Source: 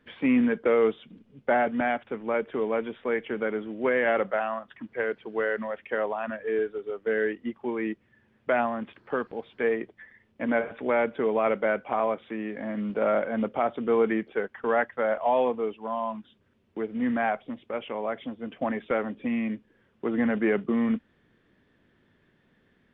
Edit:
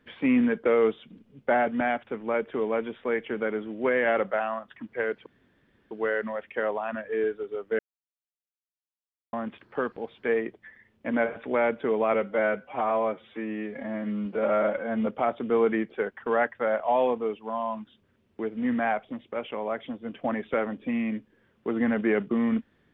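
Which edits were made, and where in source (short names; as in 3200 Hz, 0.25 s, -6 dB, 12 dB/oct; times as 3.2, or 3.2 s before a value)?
5.26 insert room tone 0.65 s
7.14–8.68 mute
11.49–13.44 stretch 1.5×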